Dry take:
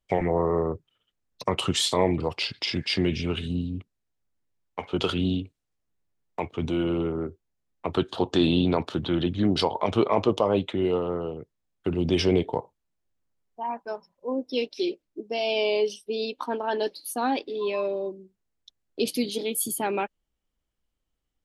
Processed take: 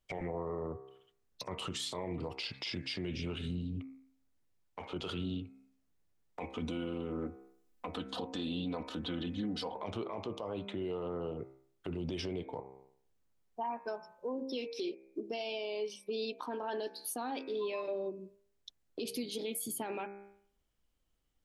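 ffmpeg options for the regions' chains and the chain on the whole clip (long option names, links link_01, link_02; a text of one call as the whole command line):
ffmpeg -i in.wav -filter_complex "[0:a]asettb=1/sr,asplit=3[link_01][link_02][link_03];[link_01]atrim=end=6.404[link_04];[link_02]atrim=start=6.4:end=9.76,asetpts=PTS-STARTPTS,afade=type=in:duration=0.004:curve=qsin,afade=type=out:start_time=3.356:duration=0.004:curve=qsin,highshelf=frequency=8100:gain=5,aecho=1:1:4:0.88,atrim=end_sample=148176[link_05];[link_03]atrim=start=9.756[link_06];[link_04][link_05]acrossfade=duration=0.004:curve1=hsin:curve2=qsin[link_07];[link_07][link_06]acrossfade=duration=0.004:curve1=qsin:curve2=hsin,bandreject=frequency=66.46:width_type=h:width=4,bandreject=frequency=132.92:width_type=h:width=4,bandreject=frequency=199.38:width_type=h:width=4,bandreject=frequency=265.84:width_type=h:width=4,bandreject=frequency=332.3:width_type=h:width=4,bandreject=frequency=398.76:width_type=h:width=4,bandreject=frequency=465.22:width_type=h:width=4,bandreject=frequency=531.68:width_type=h:width=4,bandreject=frequency=598.14:width_type=h:width=4,bandreject=frequency=664.6:width_type=h:width=4,bandreject=frequency=731.06:width_type=h:width=4,bandreject=frequency=797.52:width_type=h:width=4,bandreject=frequency=863.98:width_type=h:width=4,bandreject=frequency=930.44:width_type=h:width=4,bandreject=frequency=996.9:width_type=h:width=4,bandreject=frequency=1063.36:width_type=h:width=4,bandreject=frequency=1129.82:width_type=h:width=4,bandreject=frequency=1196.28:width_type=h:width=4,bandreject=frequency=1262.74:width_type=h:width=4,bandreject=frequency=1329.2:width_type=h:width=4,bandreject=frequency=1395.66:width_type=h:width=4,bandreject=frequency=1462.12:width_type=h:width=4,bandreject=frequency=1528.58:width_type=h:width=4,bandreject=frequency=1595.04:width_type=h:width=4,bandreject=frequency=1661.5:width_type=h:width=4,bandreject=frequency=1727.96:width_type=h:width=4,bandreject=frequency=1794.42:width_type=h:width=4,bandreject=frequency=1860.88:width_type=h:width=4,bandreject=frequency=1927.34:width_type=h:width=4,bandreject=frequency=1993.8:width_type=h:width=4,bandreject=frequency=2060.26:width_type=h:width=4,bandreject=frequency=2126.72:width_type=h:width=4,bandreject=frequency=2193.18:width_type=h:width=4,bandreject=frequency=2259.64:width_type=h:width=4,bandreject=frequency=2326.1:width_type=h:width=4,bandreject=frequency=2392.56:width_type=h:width=4,bandreject=frequency=2459.02:width_type=h:width=4,bandreject=frequency=2525.48:width_type=h:width=4,bandreject=frequency=2591.94:width_type=h:width=4,acompressor=threshold=-36dB:ratio=5,alimiter=level_in=6.5dB:limit=-24dB:level=0:latency=1:release=25,volume=-6.5dB,volume=1.5dB" out.wav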